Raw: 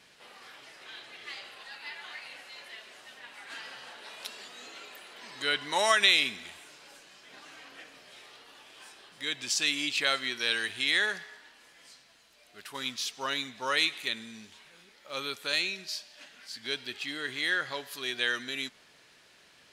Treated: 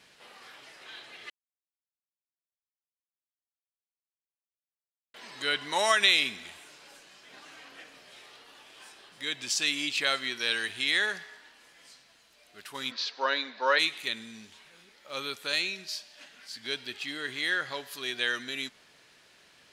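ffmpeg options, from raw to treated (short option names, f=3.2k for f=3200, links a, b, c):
-filter_complex "[0:a]asplit=3[a][b][c];[a]afade=t=out:st=12.9:d=0.02[d];[b]highpass=f=240:w=0.5412,highpass=f=240:w=1.3066,equalizer=f=540:t=q:w=4:g=9,equalizer=f=960:t=q:w=4:g=7,equalizer=f=1.6k:t=q:w=4:g=8,equalizer=f=3.1k:t=q:w=4:g=-4,equalizer=f=4.4k:t=q:w=4:g=8,lowpass=f=4.8k:w=0.5412,lowpass=f=4.8k:w=1.3066,afade=t=in:st=12.9:d=0.02,afade=t=out:st=13.78:d=0.02[e];[c]afade=t=in:st=13.78:d=0.02[f];[d][e][f]amix=inputs=3:normalize=0,asplit=3[g][h][i];[g]atrim=end=1.3,asetpts=PTS-STARTPTS,afade=t=out:st=1.296:d=0.004:c=hsin[j];[h]atrim=start=1.3:end=5.14,asetpts=PTS-STARTPTS,volume=0[k];[i]atrim=start=5.14,asetpts=PTS-STARTPTS,afade=t=in:d=0.004:c=hsin[l];[j][k][l]concat=n=3:v=0:a=1"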